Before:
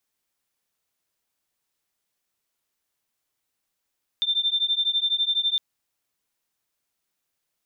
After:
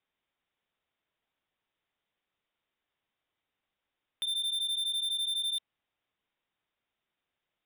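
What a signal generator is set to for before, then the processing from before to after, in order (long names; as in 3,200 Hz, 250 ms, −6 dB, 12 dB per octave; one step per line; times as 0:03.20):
two tones that beat 3,570 Hz, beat 12 Hz, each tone −24 dBFS 1.36 s
Chebyshev low-pass filter 3,700 Hz, order 8
soft clipping −30 dBFS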